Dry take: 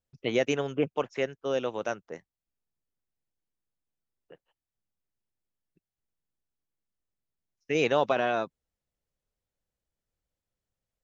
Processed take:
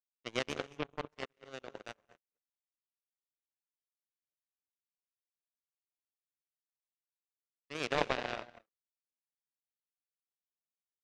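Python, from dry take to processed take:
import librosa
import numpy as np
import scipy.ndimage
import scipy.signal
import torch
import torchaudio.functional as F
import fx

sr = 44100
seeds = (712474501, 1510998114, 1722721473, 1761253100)

y = fx.rev_gated(x, sr, seeds[0], gate_ms=260, shape='rising', drr_db=3.5)
y = fx.power_curve(y, sr, exponent=3.0)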